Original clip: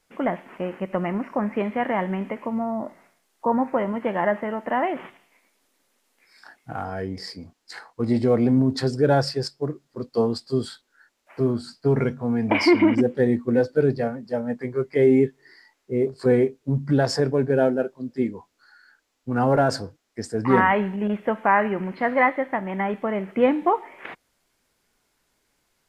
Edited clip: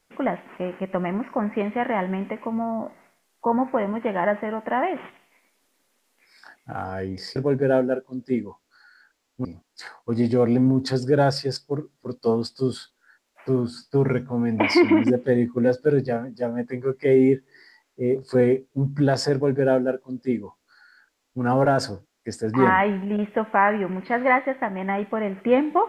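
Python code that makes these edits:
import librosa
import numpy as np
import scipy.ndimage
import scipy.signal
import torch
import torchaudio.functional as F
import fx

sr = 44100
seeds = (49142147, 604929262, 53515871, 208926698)

y = fx.edit(x, sr, fx.duplicate(start_s=17.24, length_s=2.09, to_s=7.36), tone=tone)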